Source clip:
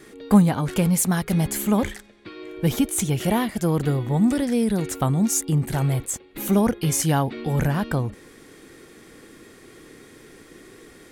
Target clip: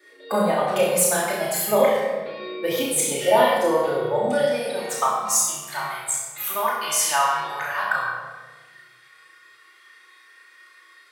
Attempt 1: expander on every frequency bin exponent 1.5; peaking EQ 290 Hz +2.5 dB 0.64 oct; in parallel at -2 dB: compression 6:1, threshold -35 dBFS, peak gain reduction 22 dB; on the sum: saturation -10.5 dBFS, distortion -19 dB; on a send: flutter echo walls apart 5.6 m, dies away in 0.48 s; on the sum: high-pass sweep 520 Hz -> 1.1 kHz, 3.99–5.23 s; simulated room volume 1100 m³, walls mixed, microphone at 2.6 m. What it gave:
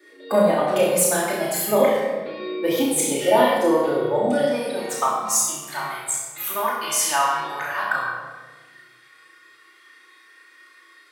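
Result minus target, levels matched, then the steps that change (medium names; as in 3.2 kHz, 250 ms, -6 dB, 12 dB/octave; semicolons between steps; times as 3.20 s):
250 Hz band +4.5 dB
change: peaking EQ 290 Hz -8 dB 0.64 oct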